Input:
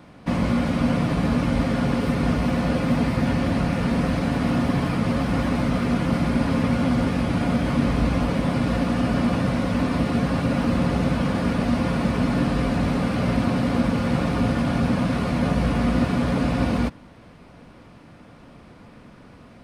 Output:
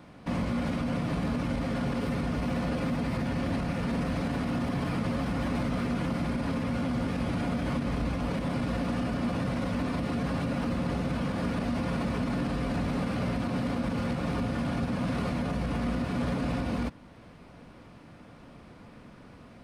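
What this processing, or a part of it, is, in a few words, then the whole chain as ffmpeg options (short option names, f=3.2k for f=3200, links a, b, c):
stacked limiters: -af "alimiter=limit=-14dB:level=0:latency=1:release=336,alimiter=limit=-18.5dB:level=0:latency=1:release=26,volume=-3.5dB"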